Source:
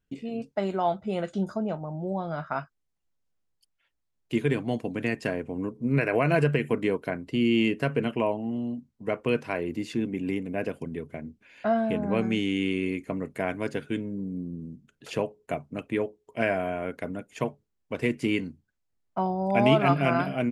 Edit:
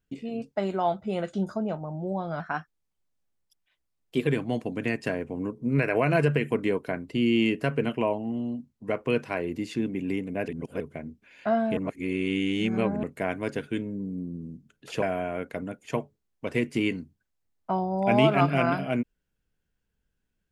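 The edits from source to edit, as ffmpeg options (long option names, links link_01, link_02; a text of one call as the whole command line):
ffmpeg -i in.wav -filter_complex "[0:a]asplit=8[link_01][link_02][link_03][link_04][link_05][link_06][link_07][link_08];[link_01]atrim=end=2.404[link_09];[link_02]atrim=start=2.4:end=4.46,asetpts=PTS-STARTPTS,asetrate=48510,aresample=44100,atrim=end_sample=82587,asetpts=PTS-STARTPTS[link_10];[link_03]atrim=start=4.456:end=10.672[link_11];[link_04]atrim=start=10.668:end=10.992,asetpts=PTS-STARTPTS,areverse[link_12];[link_05]atrim=start=10.988:end=11.962[link_13];[link_06]atrim=start=11.958:end=13.222,asetpts=PTS-STARTPTS,areverse[link_14];[link_07]atrim=start=13.218:end=15.212[link_15];[link_08]atrim=start=16.498[link_16];[link_09][link_10]acrossfade=duration=0.004:curve1=hsin:curve2=hsin[link_17];[link_17][link_11]acrossfade=duration=0.004:curve1=hsin:curve2=hsin[link_18];[link_18][link_12]acrossfade=duration=0.004:curve1=hsin:curve2=hsin[link_19];[link_19][link_13]acrossfade=duration=0.004:curve1=hsin:curve2=hsin[link_20];[link_20][link_14]acrossfade=duration=0.004:curve1=hsin:curve2=hsin[link_21];[link_21][link_15]acrossfade=duration=0.004:curve1=hsin:curve2=hsin[link_22];[link_22][link_16]acrossfade=duration=0.004:curve1=hsin:curve2=hsin" out.wav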